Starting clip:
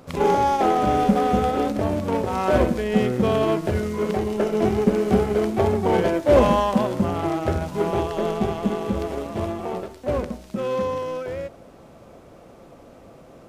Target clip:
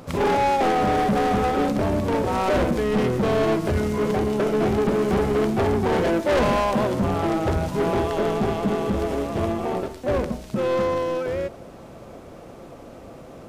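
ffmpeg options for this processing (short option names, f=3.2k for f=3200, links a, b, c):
-filter_complex "[0:a]asoftclip=type=tanh:threshold=-22dB,asplit=2[a][b];[b]asetrate=29433,aresample=44100,atempo=1.49831,volume=-10dB[c];[a][c]amix=inputs=2:normalize=0,volume=4.5dB"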